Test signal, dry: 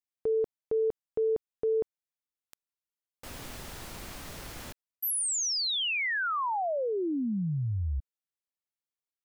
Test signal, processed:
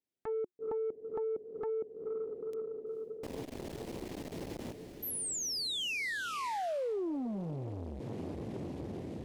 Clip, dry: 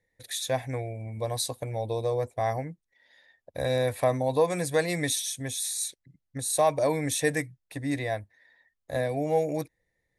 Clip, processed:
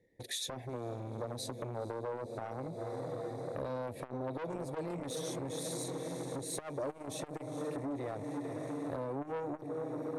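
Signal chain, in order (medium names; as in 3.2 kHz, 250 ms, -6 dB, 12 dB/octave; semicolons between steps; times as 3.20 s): FFT filter 360 Hz 0 dB, 1.3 kHz -29 dB, 1.9 kHz -22 dB; on a send: echo that smears into a reverb 456 ms, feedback 69%, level -13.5 dB; on the sum: overdrive pedal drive 27 dB, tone 5.7 kHz, clips at -12 dBFS; compression 6:1, threshold -34 dBFS; transformer saturation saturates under 860 Hz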